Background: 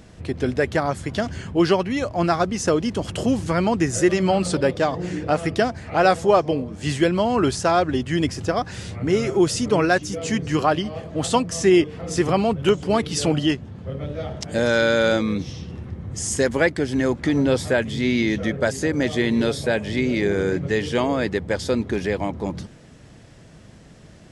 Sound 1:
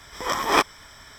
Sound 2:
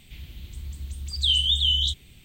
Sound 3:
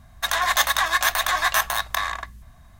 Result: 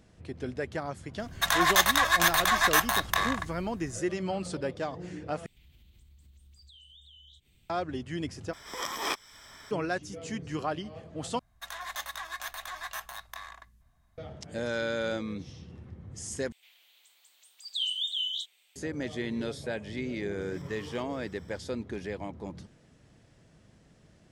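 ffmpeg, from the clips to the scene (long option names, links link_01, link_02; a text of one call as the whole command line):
ffmpeg -i bed.wav -i cue0.wav -i cue1.wav -i cue2.wav -filter_complex "[3:a]asplit=2[link_01][link_02];[2:a]asplit=2[link_03][link_04];[1:a]asplit=2[link_05][link_06];[0:a]volume=-13dB[link_07];[link_03]acompressor=threshold=-40dB:ratio=6:attack=3.2:release=140:knee=1:detection=peak[link_08];[link_05]acrossover=split=140|2300[link_09][link_10][link_11];[link_09]acompressor=threshold=-59dB:ratio=4[link_12];[link_10]acompressor=threshold=-38dB:ratio=2[link_13];[link_11]acompressor=threshold=-32dB:ratio=2[link_14];[link_12][link_13][link_14]amix=inputs=3:normalize=0[link_15];[link_04]highpass=frequency=640:width=0.5412,highpass=frequency=640:width=1.3066[link_16];[link_06]acompressor=threshold=-35dB:ratio=6:attack=3.2:release=140:knee=1:detection=peak[link_17];[link_07]asplit=5[link_18][link_19][link_20][link_21][link_22];[link_18]atrim=end=5.464[link_23];[link_08]atrim=end=2.24,asetpts=PTS-STARTPTS,volume=-14dB[link_24];[link_19]atrim=start=7.696:end=8.534[link_25];[link_15]atrim=end=1.18,asetpts=PTS-STARTPTS,volume=-3.5dB[link_26];[link_20]atrim=start=9.706:end=11.394[link_27];[link_02]atrim=end=2.79,asetpts=PTS-STARTPTS,volume=-18dB[link_28];[link_21]atrim=start=14.176:end=16.524[link_29];[link_16]atrim=end=2.24,asetpts=PTS-STARTPTS,volume=-9.5dB[link_30];[link_22]atrim=start=18.756[link_31];[link_01]atrim=end=2.79,asetpts=PTS-STARTPTS,volume=-2.5dB,afade=type=in:duration=0.004:curve=hsin,afade=type=out:start_time=2.786:duration=0.004:curve=hsin,adelay=1190[link_32];[link_17]atrim=end=1.18,asetpts=PTS-STARTPTS,volume=-15.5dB,afade=type=in:duration=0.004:curve=hsin,afade=type=out:start_time=1.176:duration=0.004:curve=hsin,adelay=20410[link_33];[link_23][link_24]acrossfade=duration=0.004:curve1=hsin:curve2=hsin[link_34];[link_34][link_25]acrossfade=duration=0.004:curve1=hsin:curve2=hsin[link_35];[link_35][link_26]acrossfade=duration=0.004:curve1=hsin:curve2=hsin[link_36];[link_36][link_27]acrossfade=duration=0.004:curve1=hsin:curve2=hsin[link_37];[link_37][link_28]acrossfade=duration=0.004:curve1=hsin:curve2=hsin[link_38];[link_38][link_29]acrossfade=duration=0.004:curve1=hsin:curve2=hsin[link_39];[link_39][link_30]acrossfade=duration=0.004:curve1=hsin:curve2=hsin[link_40];[link_40][link_31]acrossfade=duration=0.004:curve1=hsin:curve2=hsin[link_41];[link_41][link_32][link_33]amix=inputs=3:normalize=0" out.wav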